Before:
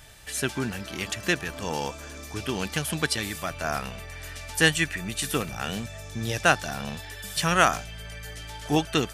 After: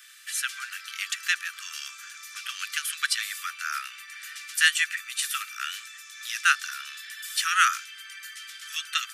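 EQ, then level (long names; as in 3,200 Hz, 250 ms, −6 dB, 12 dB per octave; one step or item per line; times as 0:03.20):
Butterworth high-pass 1,200 Hz 96 dB per octave
+1.5 dB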